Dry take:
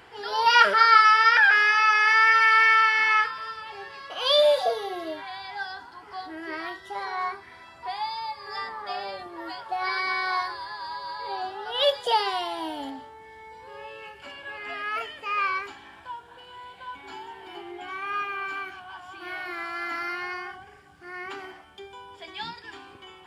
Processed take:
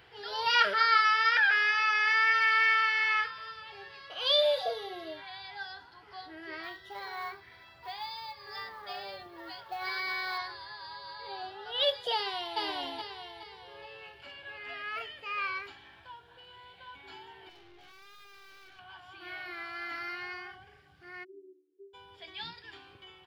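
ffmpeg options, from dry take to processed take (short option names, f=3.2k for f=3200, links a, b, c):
-filter_complex "[0:a]asettb=1/sr,asplit=3[a][b][c];[a]atrim=end=6.634[d];[b]atrim=start=6.63:end=10.38,asetpts=PTS-STARTPTS,afade=t=in:d=0.004:c=qsin,afade=t=out:st=3.746:d=0.004:c=qsin,acrusher=bits=6:mode=log:mix=0:aa=0.000001[e];[c]atrim=start=10.376[f];[d][e]acrossfade=d=0.004:c1=hsin:c2=qsin[g];[g][f]acrossfade=d=0.004:c1=qsin:c2=hsin,asplit=2[h][i];[i]afade=t=in:st=12.14:d=0.01,afade=t=out:st=12.59:d=0.01,aecho=0:1:420|840|1260|1680|2100:0.891251|0.3565|0.1426|0.0570401|0.022816[j];[h][j]amix=inputs=2:normalize=0,asettb=1/sr,asplit=3[k][l][m];[k]atrim=end=17.494[n];[l]atrim=start=17.49:end=18.79,asetpts=PTS-STARTPTS,afade=t=in:d=0.004:c=qsin,afade=t=out:st=1.296:d=0.004:c=qsin,aeval=exprs='(tanh(224*val(0)+0.5)-tanh(0.5))/224':c=same[o];[m]atrim=start=18.786[p];[n][o]acrossfade=d=0.004:c1=hsin:c2=qsin[q];[q][p]acrossfade=d=0.004:c1=qsin:c2=hsin,asplit=3[r][s][t];[r]afade=t=out:st=21.23:d=0.02[u];[s]asuperpass=centerf=350:order=8:qfactor=3,afade=t=in:st=21.23:d=0.02,afade=t=out:st=21.93:d=0.02[v];[t]afade=t=in:st=21.93:d=0.02[w];[u][v][w]amix=inputs=3:normalize=0,equalizer=f=125:t=o:w=1:g=4,equalizer=f=250:t=o:w=1:g=-7,equalizer=f=1k:t=o:w=1:g=-6,equalizer=f=4k:t=o:w=1:g=5,equalizer=f=8k:t=o:w=1:g=-11,volume=-5dB"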